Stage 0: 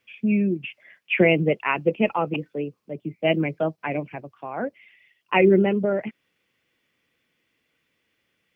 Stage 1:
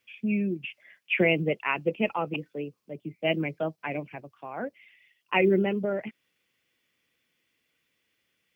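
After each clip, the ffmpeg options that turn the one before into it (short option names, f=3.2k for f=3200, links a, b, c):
-af "highshelf=f=3k:g=8,volume=-6dB"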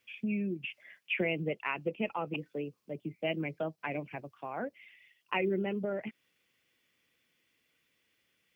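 -af "acompressor=threshold=-35dB:ratio=2"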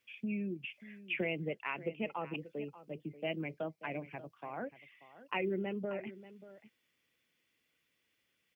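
-af "aecho=1:1:585:0.158,volume=-4dB"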